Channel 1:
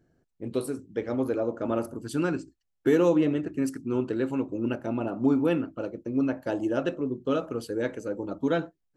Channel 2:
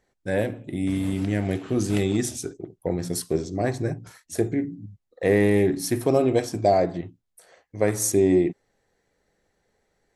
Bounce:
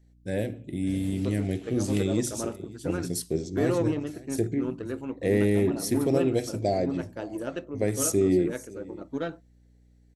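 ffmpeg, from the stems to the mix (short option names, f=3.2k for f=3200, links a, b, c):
-filter_complex "[0:a]aeval=exprs='0.299*(cos(1*acos(clip(val(0)/0.299,-1,1)))-cos(1*PI/2))+0.0133*(cos(7*acos(clip(val(0)/0.299,-1,1)))-cos(7*PI/2))':c=same,adelay=700,volume=-5dB[a];[1:a]aeval=exprs='val(0)+0.00178*(sin(2*PI*60*n/s)+sin(2*PI*2*60*n/s)/2+sin(2*PI*3*60*n/s)/3+sin(2*PI*4*60*n/s)/4+sin(2*PI*5*60*n/s)/5)':c=same,equalizer=f=1.1k:w=1.1:g=-14,volume=-2dB,asplit=2[b][c];[c]volume=-21dB,aecho=0:1:554:1[d];[a][b][d]amix=inputs=3:normalize=0"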